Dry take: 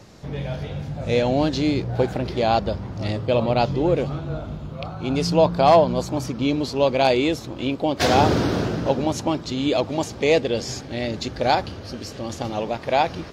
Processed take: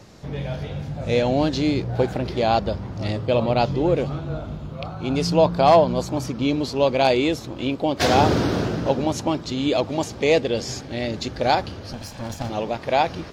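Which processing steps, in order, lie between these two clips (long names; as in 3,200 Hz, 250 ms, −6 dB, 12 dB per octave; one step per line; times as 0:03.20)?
0:11.93–0:12.50: lower of the sound and its delayed copy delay 1.2 ms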